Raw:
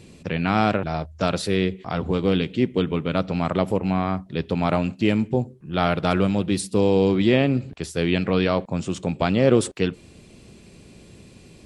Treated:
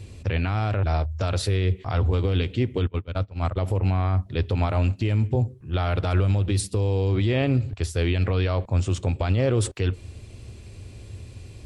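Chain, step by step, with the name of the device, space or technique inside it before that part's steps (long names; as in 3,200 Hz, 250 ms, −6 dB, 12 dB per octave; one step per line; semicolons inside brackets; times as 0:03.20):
0:02.87–0:03.59: noise gate −21 dBFS, range −26 dB
car stereo with a boomy subwoofer (low shelf with overshoot 130 Hz +8.5 dB, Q 3; brickwall limiter −13.5 dBFS, peak gain reduction 9.5 dB)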